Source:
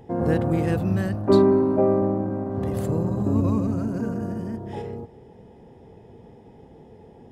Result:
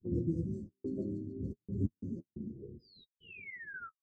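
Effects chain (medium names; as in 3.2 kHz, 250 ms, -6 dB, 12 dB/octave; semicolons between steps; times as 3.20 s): gate -45 dBFS, range -44 dB; reverb removal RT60 1 s; plain phase-vocoder stretch 0.55×; elliptic band-stop 370–6200 Hz, stop band 40 dB; feedback echo behind a high-pass 143 ms, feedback 81%, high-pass 5.5 kHz, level -7.5 dB; painted sound fall, 2.79–4.78 s, 1.1–5.1 kHz -39 dBFS; feedback comb 540 Hz, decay 0.44 s, mix 70%; trance gate "xxxx.xxxx.x.x." 89 bpm -60 dB; flange 0.58 Hz, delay 9.9 ms, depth 5.1 ms, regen -24%; level-controlled noise filter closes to 310 Hz, open at -42.5 dBFS; distance through air 130 m; trim +9 dB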